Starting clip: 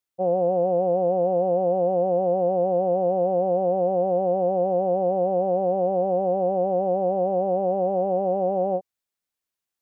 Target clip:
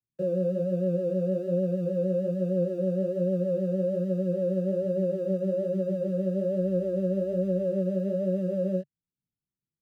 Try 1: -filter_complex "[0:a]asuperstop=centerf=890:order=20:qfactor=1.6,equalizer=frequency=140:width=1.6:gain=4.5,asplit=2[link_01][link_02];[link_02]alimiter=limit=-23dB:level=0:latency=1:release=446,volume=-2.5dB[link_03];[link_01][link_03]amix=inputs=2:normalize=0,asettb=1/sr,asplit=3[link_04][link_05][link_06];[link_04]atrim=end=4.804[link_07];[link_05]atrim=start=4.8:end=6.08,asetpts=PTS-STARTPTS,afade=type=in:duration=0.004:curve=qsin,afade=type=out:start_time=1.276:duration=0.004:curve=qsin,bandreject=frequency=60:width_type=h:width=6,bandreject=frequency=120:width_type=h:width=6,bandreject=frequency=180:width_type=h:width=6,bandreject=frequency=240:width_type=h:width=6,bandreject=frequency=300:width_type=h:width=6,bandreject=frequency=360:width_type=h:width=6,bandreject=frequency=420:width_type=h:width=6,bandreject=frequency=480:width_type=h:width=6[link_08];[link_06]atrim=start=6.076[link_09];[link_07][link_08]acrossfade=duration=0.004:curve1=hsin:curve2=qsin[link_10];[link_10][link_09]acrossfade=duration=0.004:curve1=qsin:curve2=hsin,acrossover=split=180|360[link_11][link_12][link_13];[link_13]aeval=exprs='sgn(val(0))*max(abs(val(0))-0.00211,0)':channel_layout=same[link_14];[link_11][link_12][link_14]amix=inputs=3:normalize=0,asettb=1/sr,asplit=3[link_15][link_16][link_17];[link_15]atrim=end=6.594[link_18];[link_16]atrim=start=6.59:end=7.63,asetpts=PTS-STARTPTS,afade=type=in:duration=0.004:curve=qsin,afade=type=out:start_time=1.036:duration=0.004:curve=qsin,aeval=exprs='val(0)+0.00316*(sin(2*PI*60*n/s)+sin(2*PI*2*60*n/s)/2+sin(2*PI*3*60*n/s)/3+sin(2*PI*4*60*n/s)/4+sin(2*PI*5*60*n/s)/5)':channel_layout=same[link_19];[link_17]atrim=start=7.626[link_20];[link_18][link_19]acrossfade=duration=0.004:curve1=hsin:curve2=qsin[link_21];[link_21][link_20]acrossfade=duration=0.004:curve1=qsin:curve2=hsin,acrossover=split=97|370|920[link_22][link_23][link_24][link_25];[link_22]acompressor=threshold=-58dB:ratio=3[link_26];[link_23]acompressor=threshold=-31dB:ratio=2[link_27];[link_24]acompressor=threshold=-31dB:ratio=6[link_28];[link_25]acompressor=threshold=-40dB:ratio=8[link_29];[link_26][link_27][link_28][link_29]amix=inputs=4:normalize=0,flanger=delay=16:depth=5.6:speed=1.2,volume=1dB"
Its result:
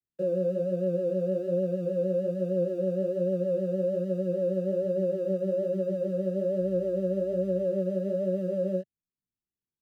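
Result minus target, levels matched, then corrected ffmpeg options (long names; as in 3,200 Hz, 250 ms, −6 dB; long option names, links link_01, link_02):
125 Hz band −3.0 dB
-filter_complex "[0:a]asuperstop=centerf=890:order=20:qfactor=1.6,equalizer=frequency=140:width=1.6:gain=14.5,asplit=2[link_01][link_02];[link_02]alimiter=limit=-23dB:level=0:latency=1:release=446,volume=-2.5dB[link_03];[link_01][link_03]amix=inputs=2:normalize=0,asettb=1/sr,asplit=3[link_04][link_05][link_06];[link_04]atrim=end=4.804[link_07];[link_05]atrim=start=4.8:end=6.08,asetpts=PTS-STARTPTS,afade=type=in:duration=0.004:curve=qsin,afade=type=out:start_time=1.276:duration=0.004:curve=qsin,bandreject=frequency=60:width_type=h:width=6,bandreject=frequency=120:width_type=h:width=6,bandreject=frequency=180:width_type=h:width=6,bandreject=frequency=240:width_type=h:width=6,bandreject=frequency=300:width_type=h:width=6,bandreject=frequency=360:width_type=h:width=6,bandreject=frequency=420:width_type=h:width=6,bandreject=frequency=480:width_type=h:width=6[link_08];[link_06]atrim=start=6.076[link_09];[link_07][link_08]acrossfade=duration=0.004:curve1=hsin:curve2=qsin[link_10];[link_10][link_09]acrossfade=duration=0.004:curve1=qsin:curve2=hsin,acrossover=split=180|360[link_11][link_12][link_13];[link_13]aeval=exprs='sgn(val(0))*max(abs(val(0))-0.00211,0)':channel_layout=same[link_14];[link_11][link_12][link_14]amix=inputs=3:normalize=0,asettb=1/sr,asplit=3[link_15][link_16][link_17];[link_15]atrim=end=6.594[link_18];[link_16]atrim=start=6.59:end=7.63,asetpts=PTS-STARTPTS,afade=type=in:duration=0.004:curve=qsin,afade=type=out:start_time=1.036:duration=0.004:curve=qsin,aeval=exprs='val(0)+0.00316*(sin(2*PI*60*n/s)+sin(2*PI*2*60*n/s)/2+sin(2*PI*3*60*n/s)/3+sin(2*PI*4*60*n/s)/4+sin(2*PI*5*60*n/s)/5)':channel_layout=same[link_19];[link_17]atrim=start=7.626[link_20];[link_18][link_19]acrossfade=duration=0.004:curve1=hsin:curve2=qsin[link_21];[link_21][link_20]acrossfade=duration=0.004:curve1=qsin:curve2=hsin,acrossover=split=97|370|920[link_22][link_23][link_24][link_25];[link_22]acompressor=threshold=-58dB:ratio=3[link_26];[link_23]acompressor=threshold=-31dB:ratio=2[link_27];[link_24]acompressor=threshold=-31dB:ratio=6[link_28];[link_25]acompressor=threshold=-40dB:ratio=8[link_29];[link_26][link_27][link_28][link_29]amix=inputs=4:normalize=0,flanger=delay=16:depth=5.6:speed=1.2,volume=1dB"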